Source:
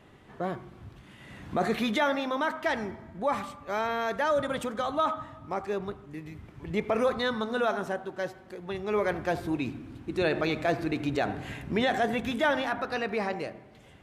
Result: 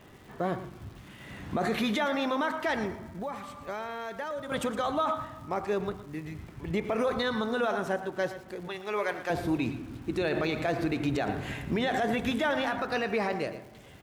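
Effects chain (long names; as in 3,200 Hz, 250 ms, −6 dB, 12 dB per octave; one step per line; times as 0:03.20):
0:03.08–0:04.52: downward compressor 5 to 1, threshold −37 dBFS, peak gain reduction 13.5 dB
0:08.68–0:09.30: high-pass filter 850 Hz 6 dB per octave
brickwall limiter −22.5 dBFS, peak gain reduction 6.5 dB
surface crackle 390 per second −51 dBFS
single-tap delay 115 ms −13.5 dB
level +2.5 dB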